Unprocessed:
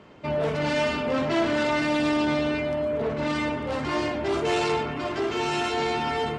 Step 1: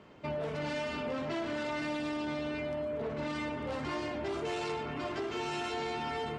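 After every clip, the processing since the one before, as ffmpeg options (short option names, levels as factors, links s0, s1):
-af "acompressor=threshold=0.0447:ratio=6,volume=0.531"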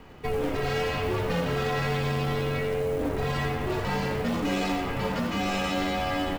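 -filter_complex "[0:a]asplit=8[s0][s1][s2][s3][s4][s5][s6][s7];[s1]adelay=87,afreqshift=91,volume=0.335[s8];[s2]adelay=174,afreqshift=182,volume=0.188[s9];[s3]adelay=261,afreqshift=273,volume=0.105[s10];[s4]adelay=348,afreqshift=364,volume=0.0589[s11];[s5]adelay=435,afreqshift=455,volume=0.0331[s12];[s6]adelay=522,afreqshift=546,volume=0.0184[s13];[s7]adelay=609,afreqshift=637,volume=0.0104[s14];[s0][s8][s9][s10][s11][s12][s13][s14]amix=inputs=8:normalize=0,acrusher=bits=6:mode=log:mix=0:aa=0.000001,afreqshift=-160,volume=2.37"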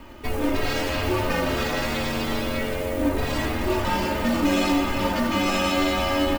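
-af "highshelf=f=9400:g=6.5,aecho=1:1:3.3:0.78,aecho=1:1:313:0.335,volume=1.41"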